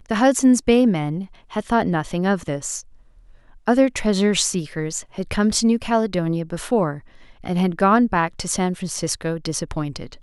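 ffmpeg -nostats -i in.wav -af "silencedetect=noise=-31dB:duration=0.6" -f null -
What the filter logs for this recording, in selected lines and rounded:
silence_start: 2.81
silence_end: 3.68 | silence_duration: 0.87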